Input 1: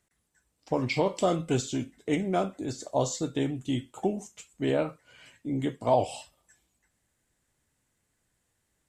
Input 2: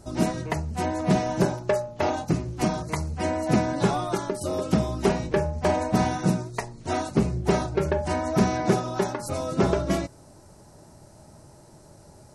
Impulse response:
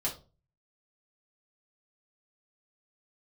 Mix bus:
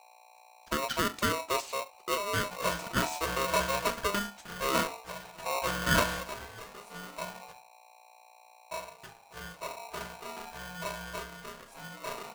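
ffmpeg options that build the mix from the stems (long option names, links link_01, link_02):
-filter_complex "[0:a]lowpass=6500,aeval=exprs='val(0)+0.00251*(sin(2*PI*60*n/s)+sin(2*PI*2*60*n/s)/2+sin(2*PI*3*60*n/s)/3+sin(2*PI*4*60*n/s)/4+sin(2*PI*5*60*n/s)/5)':channel_layout=same,volume=-4dB,asplit=2[link_01][link_02];[1:a]adelay=2450,volume=-10dB,asplit=3[link_03][link_04][link_05];[link_03]atrim=end=7.5,asetpts=PTS-STARTPTS,afade=type=out:start_time=7.496:duration=0.004:curve=hsin[link_06];[link_04]atrim=start=7.5:end=8.71,asetpts=PTS-STARTPTS,volume=0[link_07];[link_05]atrim=start=8.71,asetpts=PTS-STARTPTS,afade=type=in:duration=0.004:curve=hsin[link_08];[link_06][link_07][link_08]concat=n=3:v=0:a=1,asplit=2[link_09][link_10];[link_10]volume=-13.5dB[link_11];[link_02]apad=whole_len=652639[link_12];[link_09][link_12]sidechaingate=range=-33dB:threshold=-47dB:ratio=16:detection=peak[link_13];[2:a]atrim=start_sample=2205[link_14];[link_11][link_14]afir=irnorm=-1:irlink=0[link_15];[link_01][link_13][link_15]amix=inputs=3:normalize=0,aeval=exprs='val(0)*sgn(sin(2*PI*810*n/s))':channel_layout=same"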